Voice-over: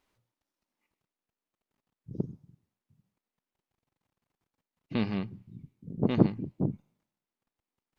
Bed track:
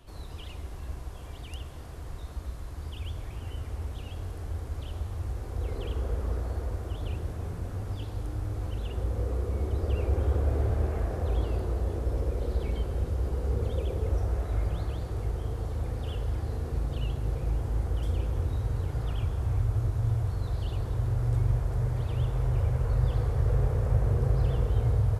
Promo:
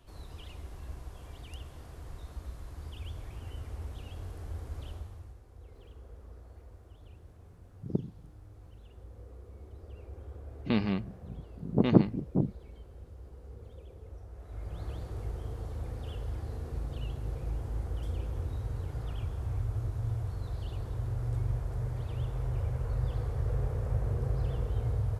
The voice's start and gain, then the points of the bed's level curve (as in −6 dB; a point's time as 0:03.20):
5.75 s, +1.5 dB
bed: 0:04.89 −5 dB
0:05.43 −19 dB
0:14.31 −19 dB
0:14.89 −6 dB